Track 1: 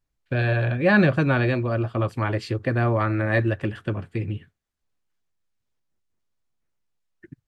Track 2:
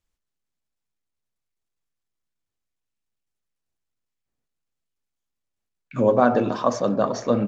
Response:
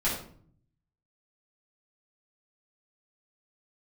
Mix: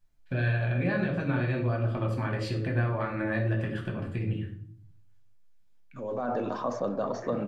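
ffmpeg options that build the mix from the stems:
-filter_complex "[0:a]acompressor=threshold=0.0355:ratio=6,alimiter=limit=0.0668:level=0:latency=1:release=150,volume=0.631,asplit=2[s0][s1];[s1]volume=0.668[s2];[1:a]alimiter=limit=0.2:level=0:latency=1:release=12,acrossover=split=410|1700[s3][s4][s5];[s3]acompressor=threshold=0.0282:ratio=4[s6];[s4]acompressor=threshold=0.0631:ratio=4[s7];[s5]acompressor=threshold=0.00355:ratio=4[s8];[s6][s7][s8]amix=inputs=3:normalize=0,volume=0.668,afade=t=in:st=6:d=0.33:silence=0.375837[s9];[2:a]atrim=start_sample=2205[s10];[s2][s10]afir=irnorm=-1:irlink=0[s11];[s0][s9][s11]amix=inputs=3:normalize=0"

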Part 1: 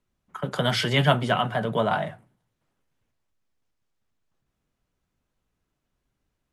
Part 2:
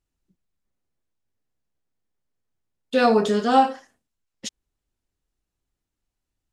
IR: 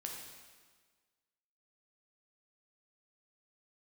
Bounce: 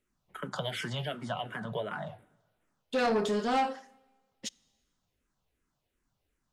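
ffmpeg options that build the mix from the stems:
-filter_complex "[0:a]acompressor=threshold=0.0282:ratio=5,asplit=2[s0][s1];[s1]afreqshift=-2.7[s2];[s0][s2]amix=inputs=2:normalize=1,volume=1.12,asplit=2[s3][s4];[s4]volume=0.106[s5];[1:a]asoftclip=type=tanh:threshold=0.133,volume=0.531,asplit=2[s6][s7];[s7]volume=0.0944[s8];[2:a]atrim=start_sample=2205[s9];[s5][s8]amix=inputs=2:normalize=0[s10];[s10][s9]afir=irnorm=-1:irlink=0[s11];[s3][s6][s11]amix=inputs=3:normalize=0,lowshelf=f=190:g=-3"

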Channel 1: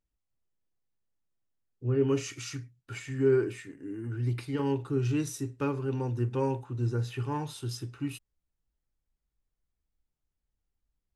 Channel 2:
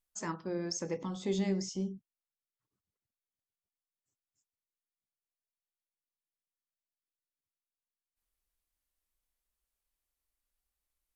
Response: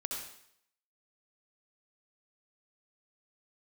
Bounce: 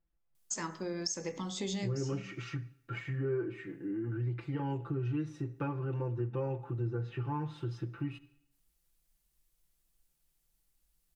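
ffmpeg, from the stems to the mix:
-filter_complex "[0:a]lowpass=2000,bandreject=f=1000:w=25,aecho=1:1:5.9:0.97,volume=1,asplit=3[s0][s1][s2];[s1]volume=0.106[s3];[1:a]highshelf=f=2100:g=10,bandreject=f=77.95:t=h:w=4,bandreject=f=155.9:t=h:w=4,bandreject=f=233.85:t=h:w=4,bandreject=f=311.8:t=h:w=4,bandreject=f=389.75:t=h:w=4,bandreject=f=467.7:t=h:w=4,bandreject=f=545.65:t=h:w=4,bandreject=f=623.6:t=h:w=4,bandreject=f=701.55:t=h:w=4,bandreject=f=779.5:t=h:w=4,bandreject=f=857.45:t=h:w=4,bandreject=f=935.4:t=h:w=4,bandreject=f=1013.35:t=h:w=4,bandreject=f=1091.3:t=h:w=4,bandreject=f=1169.25:t=h:w=4,bandreject=f=1247.2:t=h:w=4,bandreject=f=1325.15:t=h:w=4,bandreject=f=1403.1:t=h:w=4,bandreject=f=1481.05:t=h:w=4,bandreject=f=1559:t=h:w=4,bandreject=f=1636.95:t=h:w=4,bandreject=f=1714.9:t=h:w=4,bandreject=f=1792.85:t=h:w=4,bandreject=f=1870.8:t=h:w=4,bandreject=f=1948.75:t=h:w=4,bandreject=f=2026.7:t=h:w=4,bandreject=f=2104.65:t=h:w=4,bandreject=f=2182.6:t=h:w=4,bandreject=f=2260.55:t=h:w=4,bandreject=f=2338.5:t=h:w=4,adelay=350,volume=1,asplit=2[s4][s5];[s5]volume=0.0708[s6];[s2]apad=whole_len=507582[s7];[s4][s7]sidechaincompress=threshold=0.0355:ratio=8:attack=16:release=390[s8];[2:a]atrim=start_sample=2205[s9];[s3][s6]amix=inputs=2:normalize=0[s10];[s10][s9]afir=irnorm=-1:irlink=0[s11];[s0][s8][s11]amix=inputs=3:normalize=0,acompressor=threshold=0.02:ratio=3"

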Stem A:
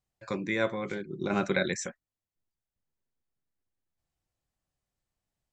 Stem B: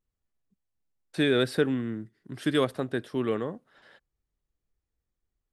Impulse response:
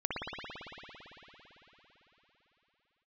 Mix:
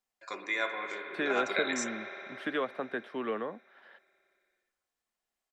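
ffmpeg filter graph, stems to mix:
-filter_complex "[0:a]highpass=710,aecho=1:1:2.9:0.37,volume=0.75,asplit=2[s0][s1];[s1]volume=0.316[s2];[1:a]acrossover=split=510 3100:gain=0.0631 1 0.112[s3][s4][s5];[s3][s4][s5]amix=inputs=3:normalize=0,acrossover=split=260|3300[s6][s7][s8];[s6]acompressor=threshold=0.002:ratio=4[s9];[s7]acompressor=threshold=0.0282:ratio=4[s10];[s8]acompressor=threshold=0.00126:ratio=4[s11];[s9][s10][s11]amix=inputs=3:normalize=0,equalizer=f=220:w=1.7:g=14.5,volume=1.12[s12];[2:a]atrim=start_sample=2205[s13];[s2][s13]afir=irnorm=-1:irlink=0[s14];[s0][s12][s14]amix=inputs=3:normalize=0"

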